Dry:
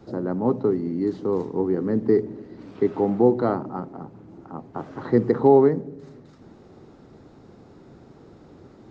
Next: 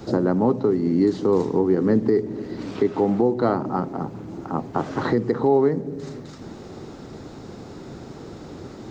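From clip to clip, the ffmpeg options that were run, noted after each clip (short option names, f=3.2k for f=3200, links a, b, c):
-filter_complex "[0:a]highshelf=f=3.5k:g=9.5,asplit=2[a][b];[b]acompressor=threshold=-26dB:ratio=6,volume=-1.5dB[c];[a][c]amix=inputs=2:normalize=0,alimiter=limit=-13.5dB:level=0:latency=1:release=413,volume=4.5dB"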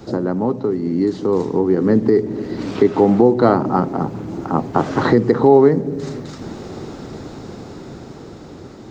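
-af "dynaudnorm=f=440:g=9:m=11.5dB"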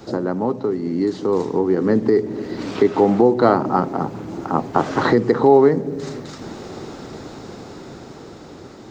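-af "lowshelf=f=320:g=-6.5,volume=1dB"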